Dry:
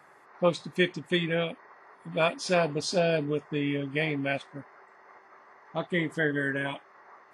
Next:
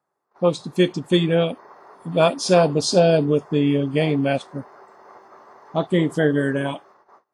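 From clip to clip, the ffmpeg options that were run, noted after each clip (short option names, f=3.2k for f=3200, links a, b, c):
-af "dynaudnorm=f=210:g=7:m=5.5dB,agate=range=-24dB:threshold=-51dB:ratio=16:detection=peak,equalizer=f=2k:w=1.3:g=-13,volume=5.5dB"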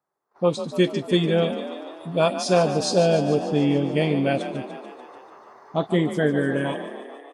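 -filter_complex "[0:a]asplit=2[a][b];[b]asplit=8[c][d][e][f][g][h][i][j];[c]adelay=146,afreqshift=36,volume=-11dB[k];[d]adelay=292,afreqshift=72,volume=-14.9dB[l];[e]adelay=438,afreqshift=108,volume=-18.8dB[m];[f]adelay=584,afreqshift=144,volume=-22.6dB[n];[g]adelay=730,afreqshift=180,volume=-26.5dB[o];[h]adelay=876,afreqshift=216,volume=-30.4dB[p];[i]adelay=1022,afreqshift=252,volume=-34.3dB[q];[j]adelay=1168,afreqshift=288,volume=-38.1dB[r];[k][l][m][n][o][p][q][r]amix=inputs=8:normalize=0[s];[a][s]amix=inputs=2:normalize=0,dynaudnorm=f=110:g=5:m=4dB,volume=-5dB"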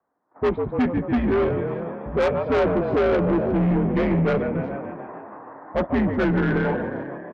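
-af "highpass=f=220:t=q:w=0.5412,highpass=f=220:t=q:w=1.307,lowpass=f=2.1k:t=q:w=0.5176,lowpass=f=2.1k:t=q:w=0.7071,lowpass=f=2.1k:t=q:w=1.932,afreqshift=-110,asoftclip=type=tanh:threshold=-23.5dB,aecho=1:1:358:0.106,volume=7dB"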